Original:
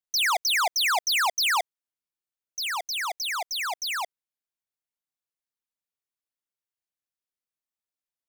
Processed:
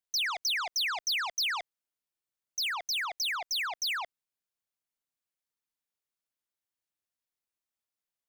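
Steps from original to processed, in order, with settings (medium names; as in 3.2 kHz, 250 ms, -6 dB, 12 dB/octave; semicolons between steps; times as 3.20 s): peak limiter -26.5 dBFS, peak gain reduction 4 dB; transformer saturation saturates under 2.1 kHz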